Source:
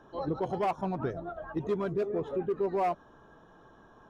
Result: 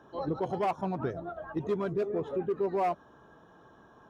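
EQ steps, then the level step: HPF 60 Hz; 0.0 dB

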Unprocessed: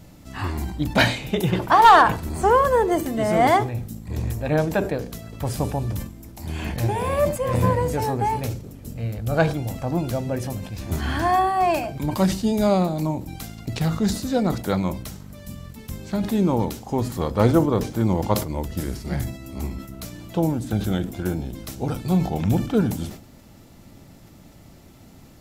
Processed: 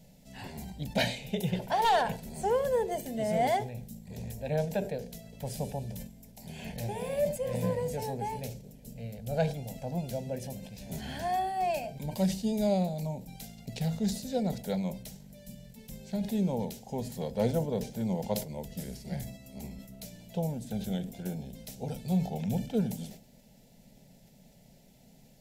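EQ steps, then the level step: fixed phaser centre 320 Hz, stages 6; -7.5 dB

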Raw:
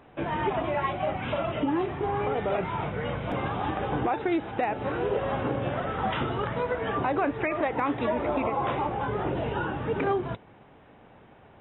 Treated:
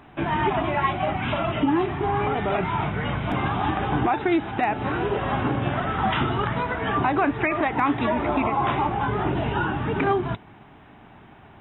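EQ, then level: bell 510 Hz -14 dB 0.36 oct; +6.5 dB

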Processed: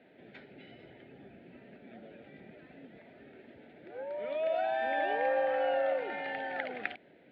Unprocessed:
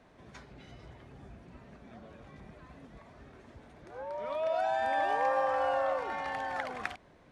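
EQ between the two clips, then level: HPF 270 Hz 12 dB/oct; air absorption 230 m; fixed phaser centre 2600 Hz, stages 4; +6.0 dB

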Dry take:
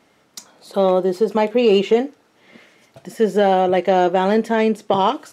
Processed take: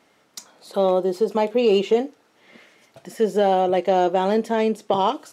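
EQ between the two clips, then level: low shelf 210 Hz -6.5 dB; dynamic EQ 1800 Hz, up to -6 dB, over -38 dBFS, Q 1.3; -1.5 dB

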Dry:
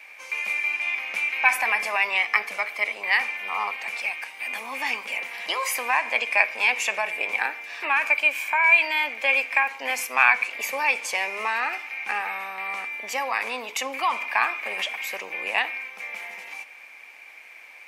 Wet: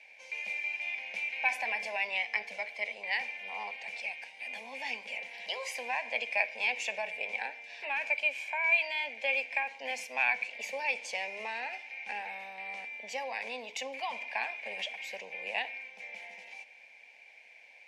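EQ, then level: LPF 5500 Hz 12 dB/oct; fixed phaser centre 330 Hz, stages 6; -6.0 dB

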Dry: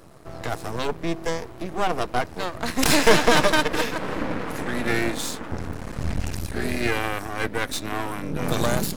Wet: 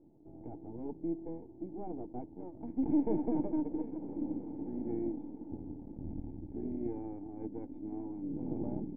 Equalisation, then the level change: vocal tract filter u; bell 1100 Hz -10.5 dB 0.47 oct; high shelf 2300 Hz -10.5 dB; -2.5 dB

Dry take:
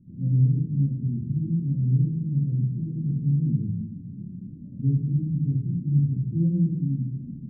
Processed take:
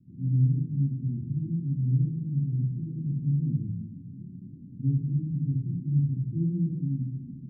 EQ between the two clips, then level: rippled Chebyshev low-pass 500 Hz, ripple 6 dB; bell 260 Hz +9 dB 0.22 oct; -3.0 dB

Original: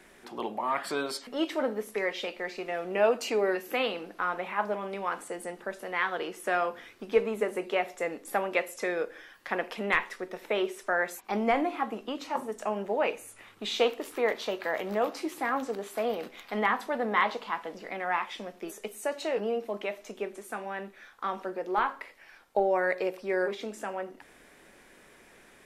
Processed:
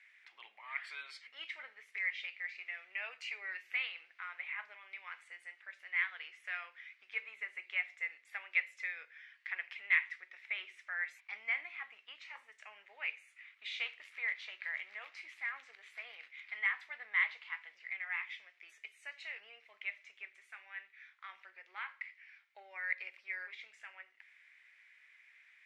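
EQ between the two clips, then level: ladder band-pass 2300 Hz, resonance 70%; +1.5 dB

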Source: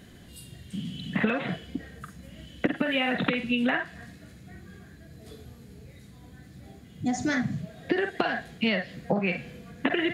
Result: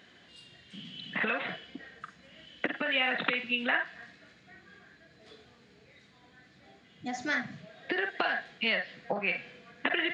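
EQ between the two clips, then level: Gaussian blur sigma 1.8 samples; HPF 1400 Hz 6 dB/oct; +3.5 dB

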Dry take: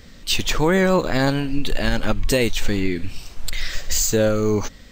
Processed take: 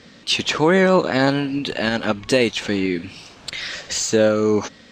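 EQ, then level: BPF 170–5500 Hz; notch 2000 Hz, Q 27; +3.0 dB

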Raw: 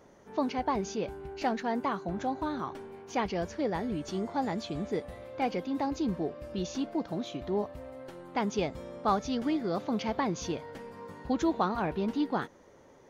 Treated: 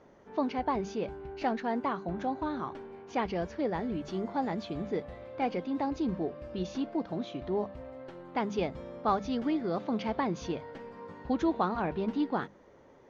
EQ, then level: air absorption 140 m; notches 50/100/150/200 Hz; 0.0 dB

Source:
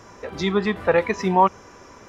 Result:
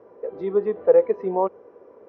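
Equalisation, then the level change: band-pass 470 Hz, Q 4.2; air absorption 190 m; +6.5 dB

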